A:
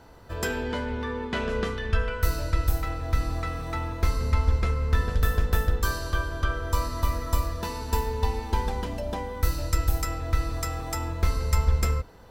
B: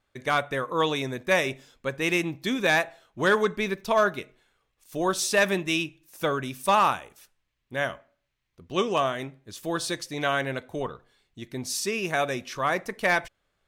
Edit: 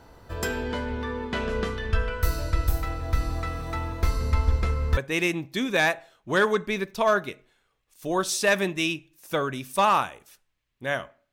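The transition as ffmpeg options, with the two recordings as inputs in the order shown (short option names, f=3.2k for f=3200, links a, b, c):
-filter_complex "[0:a]apad=whole_dur=11.32,atrim=end=11.32,atrim=end=4.972[a];[1:a]atrim=start=1.868:end=8.22[b];[a][b]acrossfade=d=0.004:c1=hsin:c2=hsin"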